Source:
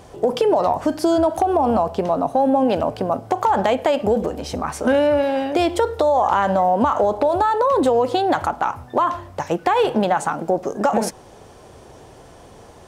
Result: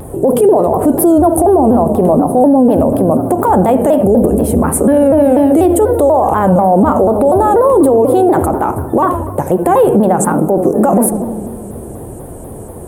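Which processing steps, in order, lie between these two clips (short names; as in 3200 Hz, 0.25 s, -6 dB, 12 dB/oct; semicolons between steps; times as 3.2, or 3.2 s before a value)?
EQ curve 350 Hz 0 dB, 5600 Hz -28 dB, 9500 Hz +7 dB; on a send: darkening echo 78 ms, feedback 79%, low-pass 1500 Hz, level -13 dB; on the sum: maximiser +18.5 dB; shaped vibrato saw down 4.1 Hz, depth 160 cents; gain -1 dB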